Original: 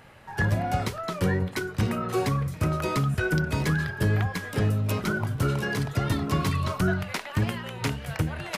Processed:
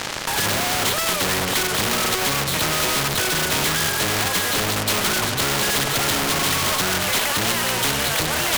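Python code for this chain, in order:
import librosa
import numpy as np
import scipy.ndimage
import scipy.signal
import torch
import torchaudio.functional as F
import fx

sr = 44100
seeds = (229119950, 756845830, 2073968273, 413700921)

y = fx.freq_compress(x, sr, knee_hz=2900.0, ratio=4.0)
y = fx.highpass(y, sr, hz=410.0, slope=6)
y = fx.high_shelf(y, sr, hz=3200.0, db=-7.0)
y = fx.level_steps(y, sr, step_db=12)
y = fx.fuzz(y, sr, gain_db=54.0, gate_db=-57.0)
y = fx.spectral_comp(y, sr, ratio=2.0)
y = F.gain(torch.from_numpy(y), 2.0).numpy()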